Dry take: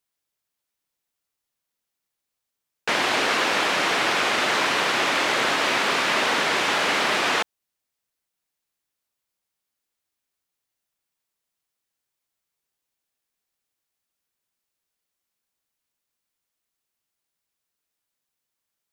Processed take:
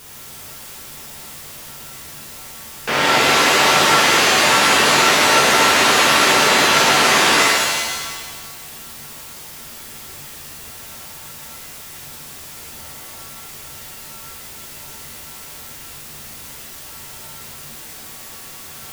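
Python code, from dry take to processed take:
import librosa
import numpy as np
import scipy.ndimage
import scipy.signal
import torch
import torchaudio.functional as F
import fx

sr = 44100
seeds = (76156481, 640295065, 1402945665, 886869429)

y = x + 0.5 * 10.0 ** (-35.0 / 20.0) * np.sign(x)
y = fx.low_shelf(y, sr, hz=180.0, db=7.5)
y = fx.notch(y, sr, hz=4100.0, q=16.0)
y = fx.rev_shimmer(y, sr, seeds[0], rt60_s=1.4, semitones=7, shimmer_db=-2, drr_db=-4.0)
y = F.gain(torch.from_numpy(y), -1.0).numpy()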